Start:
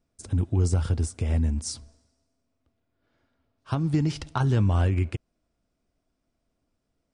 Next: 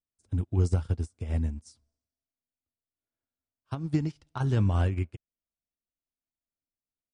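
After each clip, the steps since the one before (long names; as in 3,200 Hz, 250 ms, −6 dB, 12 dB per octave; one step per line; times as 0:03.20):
expander for the loud parts 2.5 to 1, over −36 dBFS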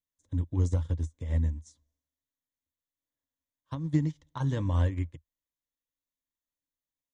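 EQ curve with evenly spaced ripples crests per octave 1.1, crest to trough 11 dB
level −3.5 dB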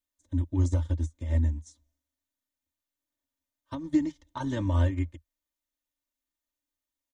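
comb filter 3.3 ms, depth 92%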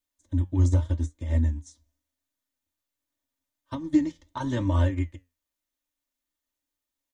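flanger 0.84 Hz, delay 6 ms, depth 6.3 ms, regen +74%
level +7 dB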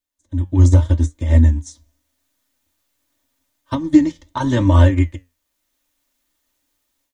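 automatic gain control gain up to 16 dB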